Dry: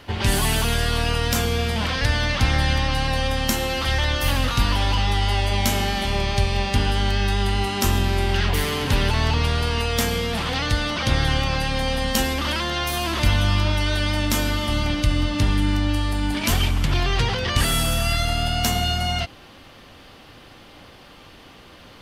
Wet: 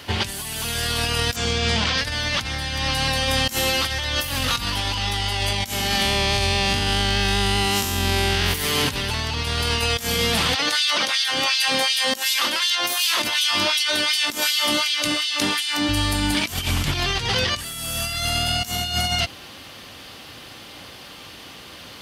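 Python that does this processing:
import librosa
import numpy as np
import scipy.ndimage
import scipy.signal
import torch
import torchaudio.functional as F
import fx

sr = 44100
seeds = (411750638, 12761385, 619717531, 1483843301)

y = fx.lowpass(x, sr, hz=7300.0, slope=24, at=(1.36, 1.98))
y = fx.spec_blur(y, sr, span_ms=133.0, at=(6.01, 8.53), fade=0.02)
y = fx.filter_lfo_highpass(y, sr, shape='sine', hz=2.7, low_hz=250.0, high_hz=3500.0, q=1.2, at=(10.54, 15.88), fade=0.02)
y = scipy.signal.sosfilt(scipy.signal.butter(2, 65.0, 'highpass', fs=sr, output='sos'), y)
y = fx.high_shelf(y, sr, hz=2600.0, db=10.5)
y = fx.over_compress(y, sr, threshold_db=-22.0, ratio=-0.5)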